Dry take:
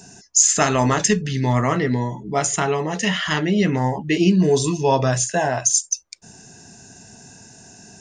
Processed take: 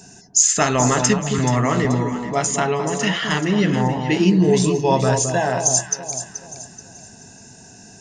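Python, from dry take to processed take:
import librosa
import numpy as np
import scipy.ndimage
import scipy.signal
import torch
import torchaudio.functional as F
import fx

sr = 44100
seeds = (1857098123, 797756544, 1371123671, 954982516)

y = fx.echo_alternate(x, sr, ms=215, hz=1100.0, feedback_pct=60, wet_db=-5.5)
y = fx.band_squash(y, sr, depth_pct=40, at=(1.38, 1.85))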